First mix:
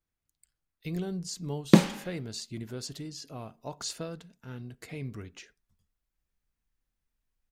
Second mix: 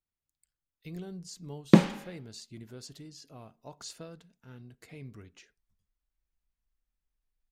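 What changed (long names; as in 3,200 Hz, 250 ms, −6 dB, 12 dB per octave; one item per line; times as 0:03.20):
speech −7.5 dB
background: add low-pass filter 3,300 Hz 6 dB per octave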